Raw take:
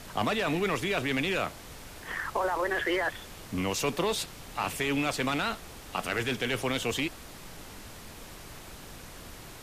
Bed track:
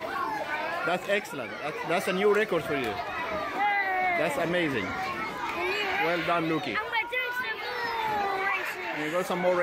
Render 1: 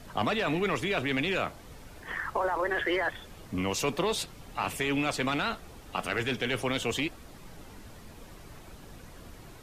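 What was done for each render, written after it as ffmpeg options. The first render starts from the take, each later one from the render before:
ffmpeg -i in.wav -af "afftdn=noise_reduction=8:noise_floor=-46" out.wav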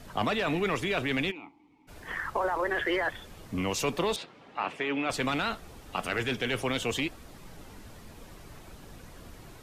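ffmpeg -i in.wav -filter_complex "[0:a]asplit=3[link_01][link_02][link_03];[link_01]afade=type=out:start_time=1.3:duration=0.02[link_04];[link_02]asplit=3[link_05][link_06][link_07];[link_05]bandpass=frequency=300:width_type=q:width=8,volume=0dB[link_08];[link_06]bandpass=frequency=870:width_type=q:width=8,volume=-6dB[link_09];[link_07]bandpass=frequency=2240:width_type=q:width=8,volume=-9dB[link_10];[link_08][link_09][link_10]amix=inputs=3:normalize=0,afade=type=in:start_time=1.3:duration=0.02,afade=type=out:start_time=1.87:duration=0.02[link_11];[link_03]afade=type=in:start_time=1.87:duration=0.02[link_12];[link_04][link_11][link_12]amix=inputs=3:normalize=0,asettb=1/sr,asplit=3[link_13][link_14][link_15];[link_13]atrim=end=4.164[link_16];[link_14]atrim=start=4.16:end=5.1,asetpts=PTS-STARTPTS,afade=type=in:duration=0.004:curve=qsin,afade=type=out:start_time=0.936:duration=0.004:curve=qsin,highpass=250,lowpass=2900[link_17];[link_15]atrim=start=5.096[link_18];[link_16][link_17]acrossfade=duration=0.004:curve1=hsin:curve2=qsin[link_19];[link_19][link_18]acrossfade=duration=0.004:curve1=qsin:curve2=hsin" out.wav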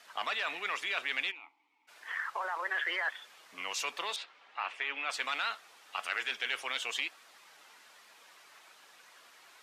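ffmpeg -i in.wav -af "highpass=1200,highshelf=frequency=8900:gain=-11.5" out.wav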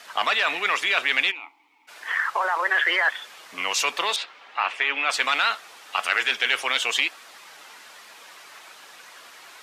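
ffmpeg -i in.wav -af "volume=12dB" out.wav

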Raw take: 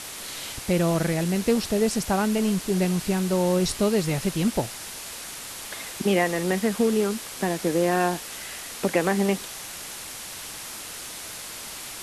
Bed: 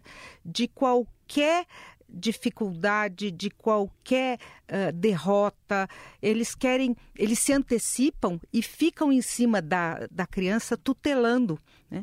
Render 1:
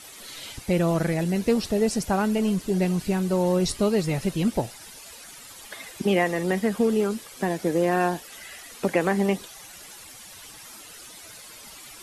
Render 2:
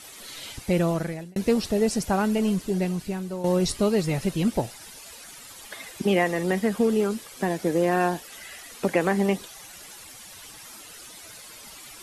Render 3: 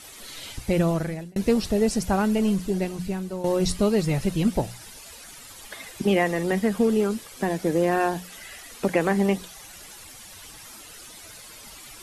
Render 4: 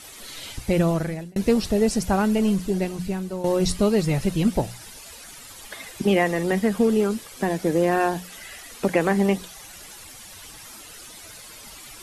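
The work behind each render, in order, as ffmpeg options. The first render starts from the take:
ffmpeg -i in.wav -af "afftdn=noise_reduction=12:noise_floor=-38" out.wav
ffmpeg -i in.wav -filter_complex "[0:a]asplit=3[link_01][link_02][link_03];[link_01]atrim=end=1.36,asetpts=PTS-STARTPTS,afade=type=out:start_time=0.81:duration=0.55[link_04];[link_02]atrim=start=1.36:end=3.44,asetpts=PTS-STARTPTS,afade=type=in:duration=0.004:curve=hsin,afade=type=out:start_time=1.16:duration=0.92:silence=0.281838[link_05];[link_03]atrim=start=3.44,asetpts=PTS-STARTPTS,afade=type=in:duration=0.004:curve=hsin:silence=0.281838[link_06];[link_04][link_05][link_06]concat=n=3:v=0:a=1" out.wav
ffmpeg -i in.wav -af "lowshelf=frequency=98:gain=9,bandreject=frequency=60:width_type=h:width=6,bandreject=frequency=120:width_type=h:width=6,bandreject=frequency=180:width_type=h:width=6" out.wav
ffmpeg -i in.wav -af "volume=1.5dB" out.wav

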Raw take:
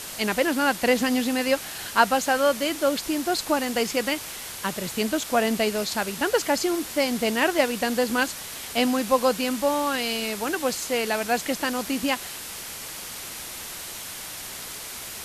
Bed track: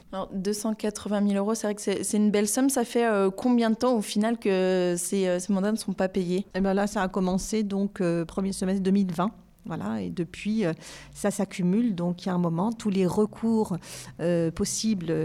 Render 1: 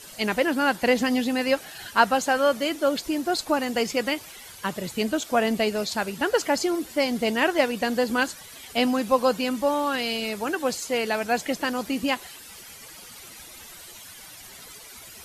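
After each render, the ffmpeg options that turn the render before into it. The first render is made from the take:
ffmpeg -i in.wav -af "afftdn=noise_reduction=12:noise_floor=-37" out.wav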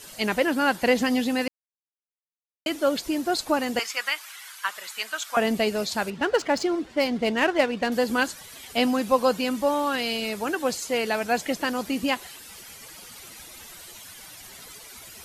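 ffmpeg -i in.wav -filter_complex "[0:a]asettb=1/sr,asplit=3[link_01][link_02][link_03];[link_01]atrim=end=3.794[link_04];[link_02]atrim=start=3.79:end=5.37,asetpts=PTS-STARTPTS,afade=type=in:duration=0.004:curve=qsin,afade=type=out:start_time=1.576:duration=0.004:curve=qsin,highpass=frequency=1300:width_type=q:width=1.7[link_05];[link_03]atrim=start=5.366[link_06];[link_04][link_05]acrossfade=duration=0.004:curve1=hsin:curve2=qsin[link_07];[link_07][link_06]acrossfade=duration=0.004:curve1=qsin:curve2=hsin,asettb=1/sr,asplit=3[link_08][link_09][link_10];[link_08]atrim=end=6.104[link_11];[link_09]atrim=start=6.1:end=7.92,asetpts=PTS-STARTPTS,afade=type=in:duration=0.004:curve=qsin,afade=type=out:start_time=1.816:duration=0.004:curve=qsin,adynamicsmooth=sensitivity=4:basefreq=3200[link_12];[link_10]atrim=start=7.916[link_13];[link_11][link_12]acrossfade=duration=0.004:curve1=hsin:curve2=qsin[link_14];[link_14][link_13]acrossfade=duration=0.004:curve1=qsin:curve2=hsin,asplit=3[link_15][link_16][link_17];[link_15]atrim=end=1.48,asetpts=PTS-STARTPTS,afade=type=out:start_time=1.476:duration=0.004:curve=hsin[link_18];[link_16]atrim=start=1.48:end=2.66,asetpts=PTS-STARTPTS,volume=0[link_19];[link_17]atrim=start=2.66,asetpts=PTS-STARTPTS,afade=type=in:duration=0.004:curve=hsin[link_20];[link_18][link_19][link_20]concat=n=3:v=0:a=1" out.wav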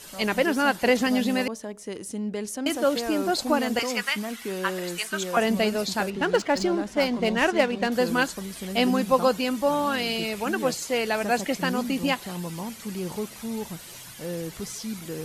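ffmpeg -i in.wav -i bed.wav -filter_complex "[1:a]volume=-8dB[link_01];[0:a][link_01]amix=inputs=2:normalize=0" out.wav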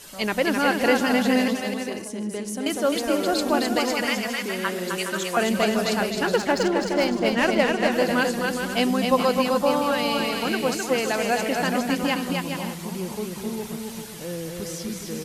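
ffmpeg -i in.wav -af "aecho=1:1:260|416|509.6|565.8|599.5:0.631|0.398|0.251|0.158|0.1" out.wav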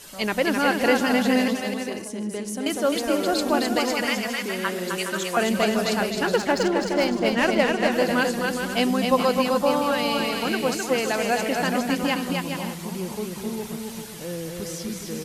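ffmpeg -i in.wav -af anull out.wav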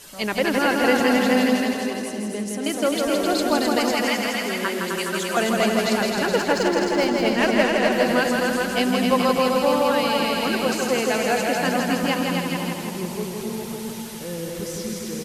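ffmpeg -i in.wav -af "aecho=1:1:164|328|492|656|820|984|1148:0.631|0.347|0.191|0.105|0.0577|0.0318|0.0175" out.wav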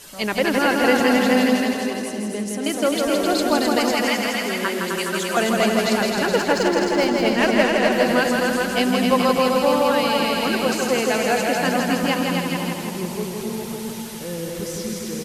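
ffmpeg -i in.wav -af "volume=1.5dB" out.wav

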